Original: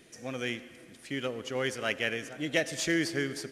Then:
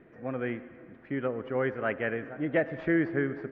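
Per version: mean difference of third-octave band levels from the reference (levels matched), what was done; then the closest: 8.5 dB: low-pass 1.7 kHz 24 dB/octave; trim +3.5 dB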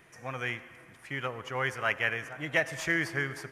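4.5 dB: graphic EQ 125/250/500/1000/2000/4000/8000 Hz +5/-9/-4/+10/+4/-9/-6 dB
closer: second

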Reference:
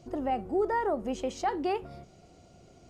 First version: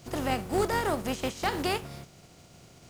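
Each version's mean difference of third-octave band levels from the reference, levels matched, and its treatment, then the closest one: 10.0 dB: spectral contrast reduction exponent 0.52; peaking EQ 130 Hz +9 dB 1.2 oct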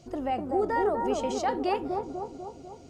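4.0 dB: peaking EQ 5.8 kHz +4.5 dB 2.6 oct; bucket-brigade echo 247 ms, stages 2048, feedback 59%, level -3 dB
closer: second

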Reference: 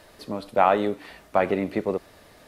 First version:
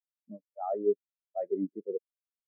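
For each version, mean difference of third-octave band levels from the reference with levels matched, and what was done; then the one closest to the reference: 17.5 dB: word length cut 6-bit, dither none; dynamic bell 1.7 kHz, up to +6 dB, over -36 dBFS, Q 1.3; reverse; compression 4:1, threshold -29 dBFS, peak gain reduction 15.5 dB; reverse; spectral contrast expander 4:1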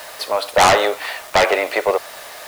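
11.0 dB: high-pass 590 Hz 24 dB/octave; in parallel at -9 dB: sine folder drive 17 dB, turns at -6 dBFS; on the sum: bit crusher 7-bit; trim +4 dB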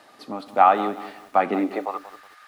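5.0 dB: frequency weighting A; high-pass sweep 110 Hz -> 1.4 kHz, 1.40–2.03 s; small resonant body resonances 260/780/1200 Hz, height 11 dB, ringing for 30 ms; bit-crushed delay 183 ms, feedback 35%, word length 7-bit, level -14 dB; trim -2 dB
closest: third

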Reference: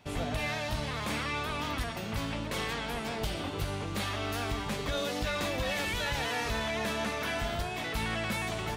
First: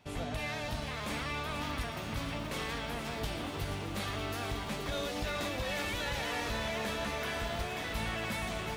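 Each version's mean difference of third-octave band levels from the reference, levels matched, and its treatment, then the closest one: 1.5 dB: bit-crushed delay 477 ms, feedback 80%, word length 9-bit, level -9 dB; trim -4 dB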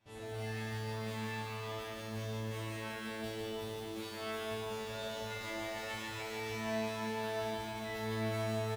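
5.5 dB: feedback comb 110 Hz, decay 0.86 s, harmonics all, mix 100%; delay 171 ms -6.5 dB; bit-crushed delay 148 ms, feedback 80%, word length 10-bit, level -5 dB; trim +2.5 dB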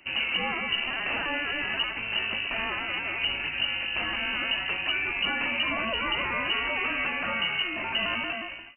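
16.5 dB: fade out at the end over 0.65 s; vibrato 0.55 Hz 14 cents; frequency inversion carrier 2.9 kHz; trim +4 dB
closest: first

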